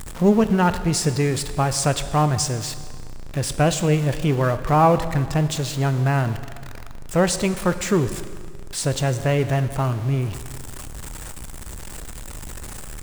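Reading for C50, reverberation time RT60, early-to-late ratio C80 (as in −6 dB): 12.0 dB, 1.9 s, 13.0 dB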